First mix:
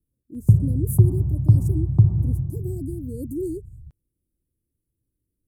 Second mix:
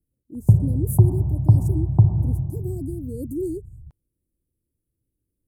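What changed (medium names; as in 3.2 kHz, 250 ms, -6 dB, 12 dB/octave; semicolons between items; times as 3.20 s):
background: add resonant low-pass 790 Hz, resonance Q 1.6; master: add peaking EQ 890 Hz +8.5 dB 1 oct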